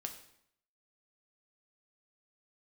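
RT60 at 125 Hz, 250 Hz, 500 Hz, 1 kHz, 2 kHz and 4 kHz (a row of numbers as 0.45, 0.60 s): 0.75, 0.80, 0.70, 0.70, 0.65, 0.60 s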